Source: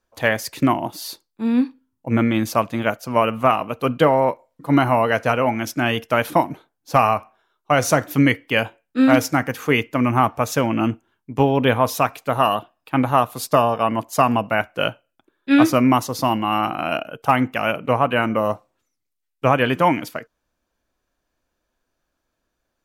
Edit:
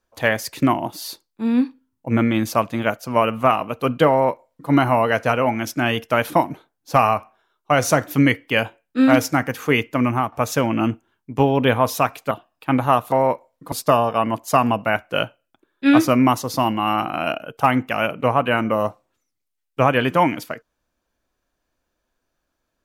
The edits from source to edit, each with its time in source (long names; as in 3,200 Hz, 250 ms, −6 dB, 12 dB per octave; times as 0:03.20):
0:04.10–0:04.70: duplicate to 0:13.37
0:10.04–0:10.32: fade out, to −9.5 dB
0:12.31–0:12.56: remove